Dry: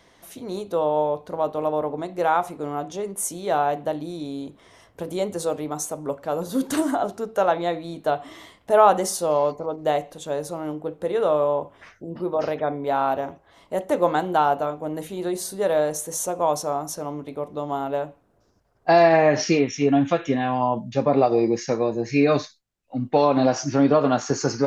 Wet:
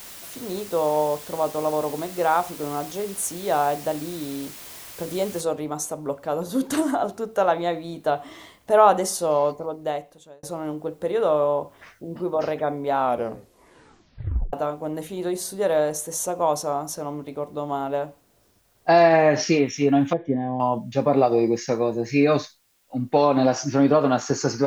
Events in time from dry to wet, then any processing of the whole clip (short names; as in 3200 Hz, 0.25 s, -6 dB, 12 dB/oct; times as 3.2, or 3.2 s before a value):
5.41 noise floor step -41 dB -66 dB
9.51–10.43 fade out
12.98 tape stop 1.55 s
20.13–20.6 running mean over 33 samples